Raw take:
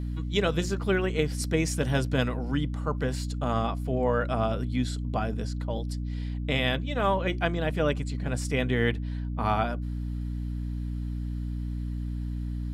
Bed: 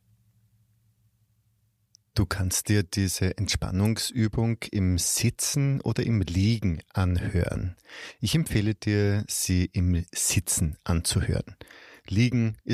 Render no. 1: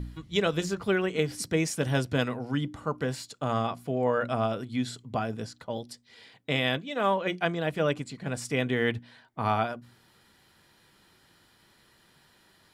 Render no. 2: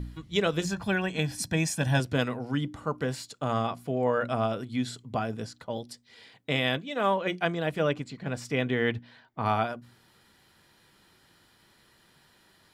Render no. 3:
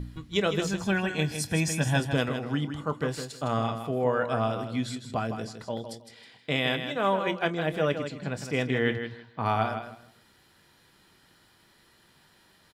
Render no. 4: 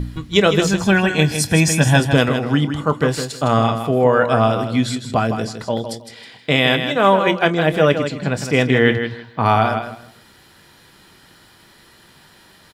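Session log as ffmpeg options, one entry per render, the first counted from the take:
-af "bandreject=f=60:t=h:w=4,bandreject=f=120:t=h:w=4,bandreject=f=180:t=h:w=4,bandreject=f=240:t=h:w=4,bandreject=f=300:t=h:w=4"
-filter_complex "[0:a]asettb=1/sr,asplit=3[a][b][c];[a]atrim=end=0.654[d];[b]atrim=start=0.65:end=2,asetpts=PTS-STARTPTS,afade=t=in:d=0.004:c=qsin,afade=t=out:st=1.346:d=0.004:c=qsin,aecho=1:1:1.2:0.65,atrim=end_sample=59535[e];[c]atrim=start=1.996[f];[d][e]acrossfade=d=0.004:c1=hsin:c2=qsin[g];[g][f]acrossfade=d=0.004:c1=qsin:c2=hsin,asettb=1/sr,asplit=3[h][i][j];[h]atrim=end=7.884[k];[i]atrim=start=7.88:end=9.46,asetpts=PTS-STARTPTS,afade=t=in:d=0.004:c=qsin,afade=t=out:st=1.576:d=0.004:c=qsin,equalizer=f=9.7k:w=1.1:g=-10[l];[j]atrim=start=9.456[m];[k][l]acrossfade=d=0.004:c1=hsin:c2=qsin[n];[n][m]acrossfade=d=0.004:c1=qsin:c2=hsin"
-filter_complex "[0:a]asplit=2[a][b];[b]adelay=26,volume=-14dB[c];[a][c]amix=inputs=2:normalize=0,asplit=2[d][e];[e]aecho=0:1:159|318|477:0.376|0.0789|0.0166[f];[d][f]amix=inputs=2:normalize=0"
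-af "volume=12dB,alimiter=limit=-2dB:level=0:latency=1"

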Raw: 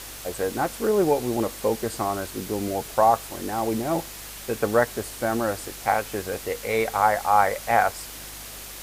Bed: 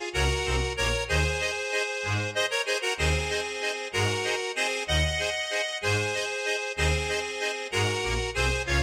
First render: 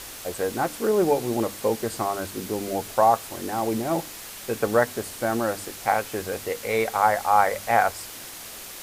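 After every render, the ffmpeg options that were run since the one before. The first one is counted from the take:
-af "bandreject=f=50:t=h:w=4,bandreject=f=100:t=h:w=4,bandreject=f=150:t=h:w=4,bandreject=f=200:t=h:w=4,bandreject=f=250:t=h:w=4,bandreject=f=300:t=h:w=4"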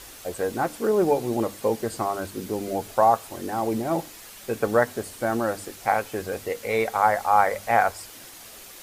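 -af "afftdn=nr=6:nf=-40"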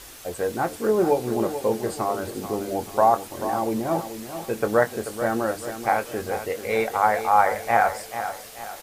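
-filter_complex "[0:a]asplit=2[a][b];[b]adelay=23,volume=-11.5dB[c];[a][c]amix=inputs=2:normalize=0,asplit=2[d][e];[e]aecho=0:1:436|872|1308|1744:0.299|0.125|0.0527|0.0221[f];[d][f]amix=inputs=2:normalize=0"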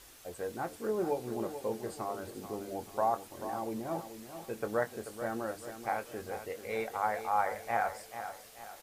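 -af "volume=-12dB"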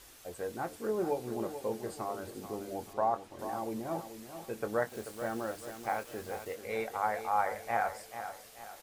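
-filter_complex "[0:a]asettb=1/sr,asplit=3[a][b][c];[a]atrim=end=2.934[d];[b]atrim=start=2.93:end=3.39,asetpts=PTS-STARTPTS,afade=t=in:d=0.004:c=qsin,afade=t=out:st=0.456:d=0.004:c=qsin,aemphasis=mode=reproduction:type=50kf[e];[c]atrim=start=3.386[f];[d][e]acrossfade=d=0.004:c1=hsin:c2=qsin[g];[g][f]acrossfade=d=0.004:c1=qsin:c2=hsin,asettb=1/sr,asplit=3[h][i][j];[h]atrim=end=4.894[k];[i]atrim=start=4.89:end=6.55,asetpts=PTS-STARTPTS,afade=t=in:d=0.004:c=qsin,afade=t=out:st=1.656:d=0.004:c=qsin,acrusher=bits=7:mix=0:aa=0.5[l];[j]atrim=start=6.546[m];[k][l]acrossfade=d=0.004:c1=hsin:c2=qsin[n];[n][m]acrossfade=d=0.004:c1=qsin:c2=hsin"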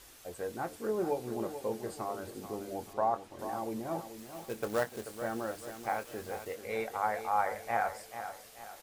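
-filter_complex "[0:a]asettb=1/sr,asplit=3[a][b][c];[a]atrim=end=4.174[d];[b]atrim=start=4.17:end=5.06,asetpts=PTS-STARTPTS,afade=t=in:d=0.004:c=qsin,afade=t=out:st=0.886:d=0.004:c=qsin,acrusher=bits=3:mode=log:mix=0:aa=0.000001[e];[c]atrim=start=5.056[f];[d][e]acrossfade=d=0.004:c1=hsin:c2=qsin[g];[g][f]acrossfade=d=0.004:c1=qsin:c2=hsin"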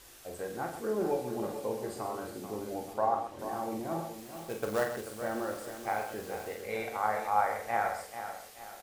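-filter_complex "[0:a]asplit=2[a][b];[b]adelay=37,volume=-10.5dB[c];[a][c]amix=inputs=2:normalize=0,asplit=2[d][e];[e]aecho=0:1:48|128:0.473|0.335[f];[d][f]amix=inputs=2:normalize=0"

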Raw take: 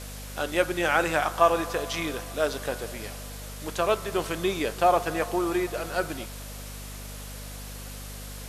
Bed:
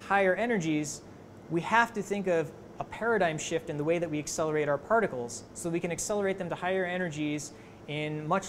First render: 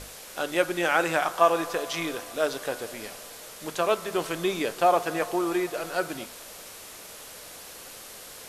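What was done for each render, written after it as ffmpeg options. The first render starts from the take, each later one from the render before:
-af "bandreject=f=50:t=h:w=6,bandreject=f=100:t=h:w=6,bandreject=f=150:t=h:w=6,bandreject=f=200:t=h:w=6,bandreject=f=250:t=h:w=6"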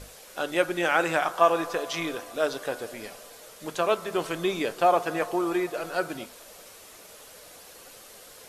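-af "afftdn=nr=6:nf=-44"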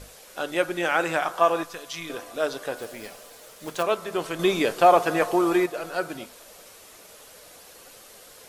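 -filter_complex "[0:a]asettb=1/sr,asplit=3[a][b][c];[a]atrim=end=1.634[d];[b]atrim=start=1.63:end=2.1,asetpts=PTS-STARTPTS,afade=t=in:d=0.004:c=qsin,afade=t=out:st=0.466:d=0.004:c=qsin,equalizer=f=610:w=0.42:g=-12.5[e];[c]atrim=start=2.096[f];[d][e]acrossfade=d=0.004:c1=hsin:c2=qsin[g];[g][f]acrossfade=d=0.004:c1=qsin:c2=hsin,asettb=1/sr,asplit=3[h][i][j];[h]atrim=end=2.774[k];[i]atrim=start=2.77:end=3.83,asetpts=PTS-STARTPTS,afade=t=in:d=0.004:c=qsin,afade=t=out:st=1.056:d=0.004:c=qsin,acrusher=bits=3:mode=log:mix=0:aa=0.000001[l];[j]atrim=start=3.826[m];[k][l]acrossfade=d=0.004:c1=hsin:c2=qsin[n];[n][m]acrossfade=d=0.004:c1=qsin:c2=hsin,asettb=1/sr,asplit=3[o][p][q];[o]atrim=end=4.394[r];[p]atrim=start=4.39:end=5.66,asetpts=PTS-STARTPTS,afade=t=in:d=0.004:c=qsin,afade=t=out:st=1.266:d=0.004:c=qsin,acontrast=32[s];[q]atrim=start=5.656[t];[r][s]acrossfade=d=0.004:c1=hsin:c2=qsin[u];[u][t]acrossfade=d=0.004:c1=qsin:c2=hsin"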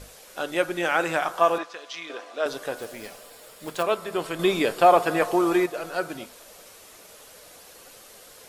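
-filter_complex "[0:a]asettb=1/sr,asplit=3[a][b][c];[a]atrim=end=1.584[d];[b]atrim=start=1.58:end=2.46,asetpts=PTS-STARTPTS,afade=t=in:d=0.004:c=qsin,afade=t=out:st=0.876:d=0.004:c=qsin,highpass=390,lowpass=4.9k[e];[c]atrim=start=2.456[f];[d][e]acrossfade=d=0.004:c1=hsin:c2=qsin[g];[g][f]acrossfade=d=0.004:c1=qsin:c2=hsin,asettb=1/sr,asplit=3[h][i][j];[h]atrim=end=3.184[k];[i]atrim=start=3.18:end=5.25,asetpts=PTS-STARTPTS,afade=t=in:d=0.004:c=qsin,afade=t=out:st=2.066:d=0.004:c=qsin,bandreject=f=6.1k:w=8[l];[j]atrim=start=5.246[m];[k][l]acrossfade=d=0.004:c1=hsin:c2=qsin[n];[n][m]acrossfade=d=0.004:c1=qsin:c2=hsin"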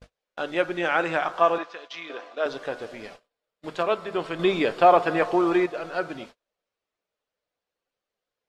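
-af "lowpass=4k,agate=range=-36dB:threshold=-43dB:ratio=16:detection=peak"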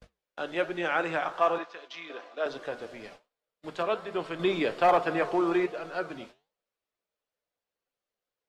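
-filter_complex "[0:a]flanger=delay=4.8:depth=9.2:regen=-83:speed=1.2:shape=triangular,acrossover=split=200|880[a][b][c];[b]volume=21dB,asoftclip=hard,volume=-21dB[d];[a][d][c]amix=inputs=3:normalize=0"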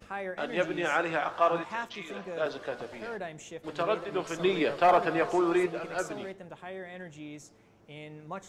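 -filter_complex "[1:a]volume=-11.5dB[a];[0:a][a]amix=inputs=2:normalize=0"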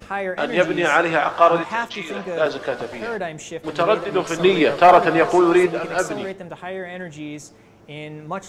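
-af "volume=11dB"

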